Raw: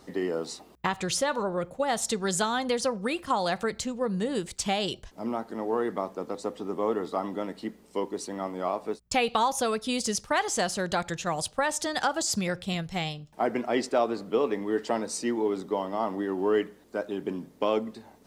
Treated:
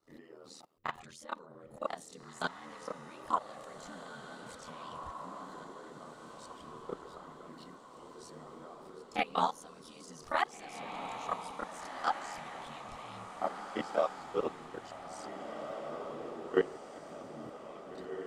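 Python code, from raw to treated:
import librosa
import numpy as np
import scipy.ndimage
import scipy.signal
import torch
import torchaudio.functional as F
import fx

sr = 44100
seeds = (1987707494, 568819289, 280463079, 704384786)

y = fx.peak_eq(x, sr, hz=1200.0, db=7.0, octaves=0.25)
y = fx.hum_notches(y, sr, base_hz=60, count=9)
y = fx.level_steps(y, sr, step_db=24)
y = fx.chorus_voices(y, sr, voices=4, hz=0.68, base_ms=29, depth_ms=2.6, mix_pct=65)
y = y * np.sin(2.0 * np.pi * 40.0 * np.arange(len(y)) / sr)
y = fx.echo_diffused(y, sr, ms=1824, feedback_pct=52, wet_db=-7.0)
y = y * librosa.db_to_amplitude(1.0)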